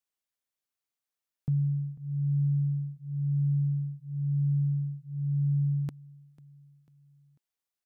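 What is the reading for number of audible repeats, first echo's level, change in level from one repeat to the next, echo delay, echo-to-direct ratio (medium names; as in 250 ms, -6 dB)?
3, -21.5 dB, -6.5 dB, 495 ms, -20.5 dB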